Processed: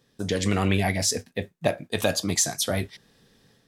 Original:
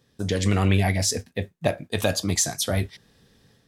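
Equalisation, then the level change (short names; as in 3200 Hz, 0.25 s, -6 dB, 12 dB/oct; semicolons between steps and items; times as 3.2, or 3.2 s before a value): bell 72 Hz -8 dB 1.3 oct; 0.0 dB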